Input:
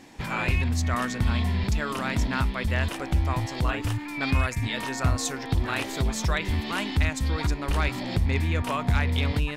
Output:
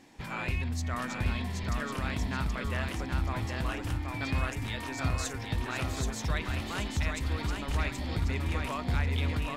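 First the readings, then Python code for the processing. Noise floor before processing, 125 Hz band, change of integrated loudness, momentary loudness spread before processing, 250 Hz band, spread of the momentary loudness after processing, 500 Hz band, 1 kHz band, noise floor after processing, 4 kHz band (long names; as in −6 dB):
−35 dBFS, −6.0 dB, −6.0 dB, 3 LU, −6.0 dB, 3 LU, −6.0 dB, −6.0 dB, −39 dBFS, −6.0 dB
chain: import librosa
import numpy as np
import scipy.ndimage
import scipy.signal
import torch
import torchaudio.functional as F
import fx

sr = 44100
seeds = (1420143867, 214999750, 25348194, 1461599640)

y = fx.echo_feedback(x, sr, ms=777, feedback_pct=35, wet_db=-4)
y = y * librosa.db_to_amplitude(-7.5)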